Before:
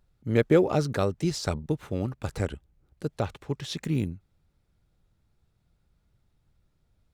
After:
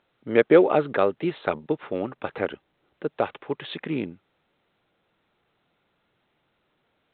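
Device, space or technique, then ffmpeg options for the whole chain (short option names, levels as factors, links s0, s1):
telephone: -af "highpass=350,lowpass=3200,volume=2.24" -ar 8000 -c:a pcm_alaw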